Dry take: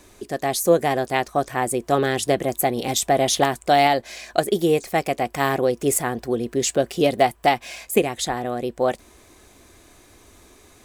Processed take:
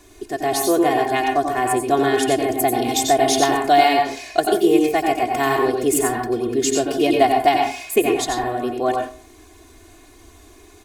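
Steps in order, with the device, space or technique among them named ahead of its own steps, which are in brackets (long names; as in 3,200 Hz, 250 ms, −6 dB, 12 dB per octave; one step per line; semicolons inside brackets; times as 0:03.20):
microphone above a desk (comb filter 2.8 ms, depth 82%; convolution reverb RT60 0.40 s, pre-delay 85 ms, DRR 1.5 dB)
level −2 dB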